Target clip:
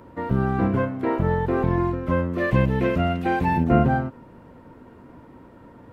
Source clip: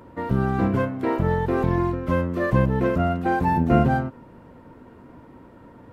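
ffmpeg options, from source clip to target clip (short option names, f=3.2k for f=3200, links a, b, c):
-filter_complex "[0:a]acrossover=split=3300[a][b];[b]acompressor=threshold=-60dB:ratio=4:attack=1:release=60[c];[a][c]amix=inputs=2:normalize=0,asettb=1/sr,asplit=3[d][e][f];[d]atrim=end=2.384[g];[e]atrim=start=2.38:end=3.64,asetpts=PTS-STARTPTS,afade=t=in:d=0.004:c=qsin,afade=t=out:st=1.256:d=0.004:c=qsin,highshelf=f=1.8k:t=q:w=1.5:g=7[h];[f]atrim=start=3.636[i];[g][h]acrossfade=d=0.004:c1=hsin:c2=qsin[j];[j][i]acrossfade=d=0.004:c1=qsin:c2=hsin"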